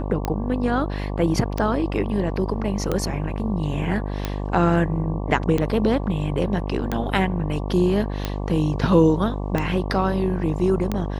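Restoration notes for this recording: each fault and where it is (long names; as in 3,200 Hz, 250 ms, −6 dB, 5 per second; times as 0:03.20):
mains buzz 50 Hz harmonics 23 −27 dBFS
scratch tick 45 rpm −10 dBFS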